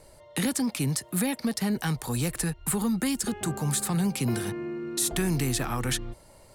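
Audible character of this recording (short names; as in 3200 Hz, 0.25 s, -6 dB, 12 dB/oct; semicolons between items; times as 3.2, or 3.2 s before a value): noise floor -54 dBFS; spectral tilt -4.5 dB/oct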